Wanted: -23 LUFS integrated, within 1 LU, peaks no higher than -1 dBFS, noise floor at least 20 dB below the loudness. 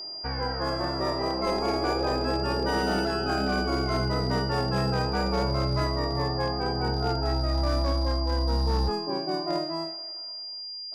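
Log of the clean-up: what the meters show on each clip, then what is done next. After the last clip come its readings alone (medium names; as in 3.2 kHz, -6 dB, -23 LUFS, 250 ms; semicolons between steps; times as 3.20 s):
clipped samples 1.4%; clipping level -19.5 dBFS; steady tone 4.8 kHz; tone level -35 dBFS; loudness -27.5 LUFS; peak level -19.5 dBFS; loudness target -23.0 LUFS
-> clip repair -19.5 dBFS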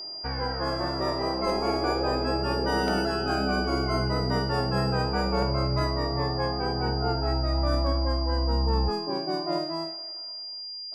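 clipped samples 0.0%; steady tone 4.8 kHz; tone level -35 dBFS
-> band-stop 4.8 kHz, Q 30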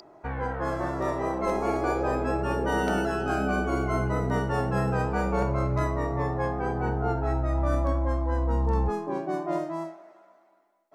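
steady tone not found; loudness -28.0 LUFS; peak level -12.0 dBFS; loudness target -23.0 LUFS
-> trim +5 dB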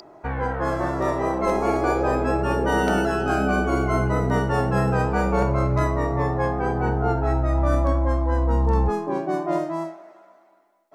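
loudness -23.0 LUFS; peak level -7.0 dBFS; noise floor -55 dBFS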